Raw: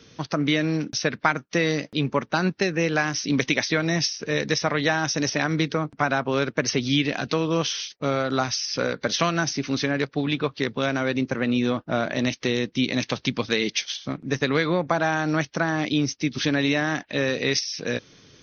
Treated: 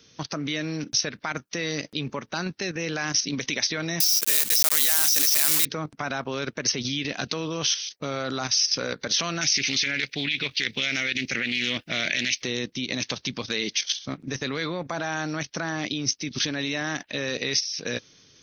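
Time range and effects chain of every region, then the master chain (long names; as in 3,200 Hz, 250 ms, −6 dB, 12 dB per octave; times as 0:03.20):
0:04.00–0:05.66: one scale factor per block 3 bits + spectral tilt +4 dB per octave + downward compressor 2 to 1, threshold −19 dBFS
0:09.41–0:12.42: high shelf with overshoot 1,600 Hz +11.5 dB, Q 3 + highs frequency-modulated by the lows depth 0.12 ms
whole clip: brickwall limiter −13 dBFS; output level in coarse steps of 10 dB; high-shelf EQ 3,500 Hz +12 dB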